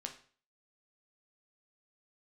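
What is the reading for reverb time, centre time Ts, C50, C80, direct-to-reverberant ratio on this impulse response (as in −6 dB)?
0.45 s, 13 ms, 10.5 dB, 15.0 dB, 3.0 dB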